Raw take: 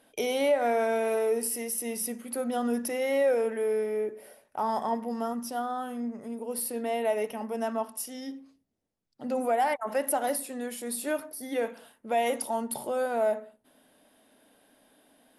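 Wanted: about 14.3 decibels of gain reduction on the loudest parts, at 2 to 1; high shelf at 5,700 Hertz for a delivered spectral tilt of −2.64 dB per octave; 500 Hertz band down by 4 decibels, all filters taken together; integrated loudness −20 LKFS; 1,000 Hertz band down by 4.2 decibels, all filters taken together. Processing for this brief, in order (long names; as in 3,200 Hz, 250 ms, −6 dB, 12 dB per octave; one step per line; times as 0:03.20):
parametric band 500 Hz −3.5 dB
parametric band 1,000 Hz −4.5 dB
high-shelf EQ 5,700 Hz +5 dB
downward compressor 2 to 1, threshold −50 dBFS
level +23.5 dB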